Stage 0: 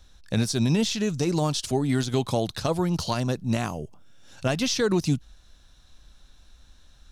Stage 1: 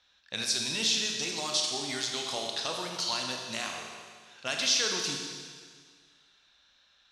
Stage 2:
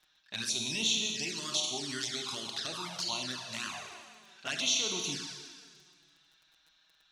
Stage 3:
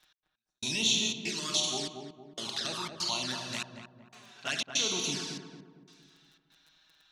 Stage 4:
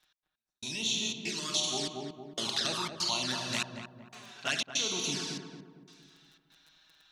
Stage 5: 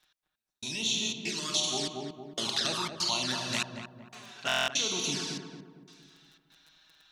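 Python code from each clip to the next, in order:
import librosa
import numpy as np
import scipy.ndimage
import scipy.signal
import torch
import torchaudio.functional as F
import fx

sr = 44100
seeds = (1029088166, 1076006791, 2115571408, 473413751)

y1 = fx.env_lowpass(x, sr, base_hz=2900.0, full_db=-20.5)
y1 = fx.bandpass_q(y1, sr, hz=4300.0, q=0.67)
y1 = fx.rev_schroeder(y1, sr, rt60_s=1.8, comb_ms=28, drr_db=1.0)
y1 = y1 * 10.0 ** (2.0 / 20.0)
y2 = fx.peak_eq(y1, sr, hz=500.0, db=-10.0, octaves=0.28)
y2 = fx.dmg_crackle(y2, sr, seeds[0], per_s=10.0, level_db=-45.0)
y2 = fx.env_flanger(y2, sr, rest_ms=6.7, full_db=-28.0)
y3 = fx.step_gate(y2, sr, bpm=120, pattern='x....xxxx.xxxx', floor_db=-60.0, edge_ms=4.5)
y3 = fx.echo_filtered(y3, sr, ms=229, feedback_pct=47, hz=960.0, wet_db=-4.5)
y3 = y3 * 10.0 ** (2.5 / 20.0)
y4 = fx.rider(y3, sr, range_db=5, speed_s=0.5)
y5 = fx.buffer_glitch(y4, sr, at_s=(4.47,), block=1024, repeats=8)
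y5 = y5 * 10.0 ** (1.5 / 20.0)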